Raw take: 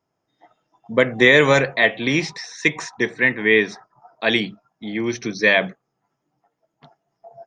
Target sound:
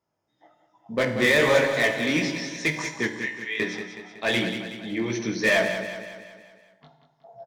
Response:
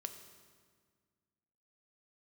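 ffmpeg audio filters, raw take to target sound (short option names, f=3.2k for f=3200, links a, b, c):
-filter_complex "[0:a]asettb=1/sr,asplit=3[a][b][c];[a]atrim=end=3.084[d];[b]atrim=start=3.08:end=3.6,asetpts=PTS-STARTPTS,afade=t=in:d=0.004:c=qsin,afade=t=out:st=0.516:d=0.004:c=qsin,aderivative[e];[c]atrim=start=3.596[f];[d][e]acrossfade=d=0.004:c1=hsin:c2=qsin[g];[g][f]acrossfade=d=0.004:c1=qsin:c2=hsin,flanger=delay=16:depth=4.7:speed=2.7,asplit=2[h][i];[i]aeval=exprs='0.106*(abs(mod(val(0)/0.106+3,4)-2)-1)':c=same,volume=-4.5dB[j];[h][j]amix=inputs=2:normalize=0,aecho=1:1:186|372|558|744|930|1116:0.355|0.185|0.0959|0.0499|0.0259|0.0135[k];[1:a]atrim=start_sample=2205,afade=t=out:st=0.33:d=0.01,atrim=end_sample=14994,asetrate=66150,aresample=44100[l];[k][l]afir=irnorm=-1:irlink=0,volume=2.5dB"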